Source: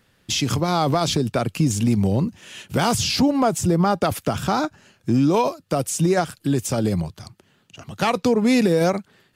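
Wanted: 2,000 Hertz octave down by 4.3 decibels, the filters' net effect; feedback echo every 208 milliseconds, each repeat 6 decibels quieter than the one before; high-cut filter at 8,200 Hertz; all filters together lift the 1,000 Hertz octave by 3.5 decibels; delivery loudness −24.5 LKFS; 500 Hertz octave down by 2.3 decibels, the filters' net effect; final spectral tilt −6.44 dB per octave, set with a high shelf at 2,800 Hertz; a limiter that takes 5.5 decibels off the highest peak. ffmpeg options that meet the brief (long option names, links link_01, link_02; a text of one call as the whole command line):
ffmpeg -i in.wav -af "lowpass=8200,equalizer=frequency=500:width_type=o:gain=-5,equalizer=frequency=1000:width_type=o:gain=9,equalizer=frequency=2000:width_type=o:gain=-7,highshelf=frequency=2800:gain=-6,alimiter=limit=-11dB:level=0:latency=1,aecho=1:1:208|416|624|832|1040|1248:0.501|0.251|0.125|0.0626|0.0313|0.0157,volume=-3dB" out.wav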